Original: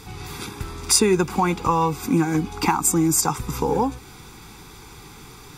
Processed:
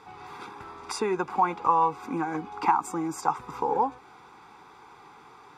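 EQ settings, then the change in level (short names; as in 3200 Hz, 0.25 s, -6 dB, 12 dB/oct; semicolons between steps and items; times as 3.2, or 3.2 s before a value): band-pass 900 Hz, Q 1.3; 0.0 dB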